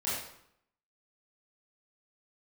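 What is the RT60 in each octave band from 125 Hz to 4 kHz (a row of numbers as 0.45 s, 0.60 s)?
0.75 s, 0.80 s, 0.70 s, 0.70 s, 0.65 s, 0.55 s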